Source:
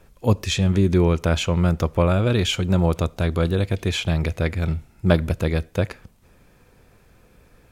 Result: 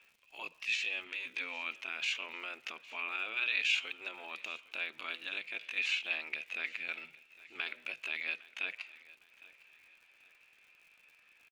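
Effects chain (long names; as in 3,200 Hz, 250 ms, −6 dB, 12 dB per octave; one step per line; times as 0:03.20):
gate on every frequency bin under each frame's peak −10 dB weak
brickwall limiter −18.5 dBFS, peak gain reduction 9.5 dB
tempo change 0.67×
resonant band-pass 2,600 Hz, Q 5.6
surface crackle 110 per second −61 dBFS
repeating echo 808 ms, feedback 38%, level −20.5 dB
level +7 dB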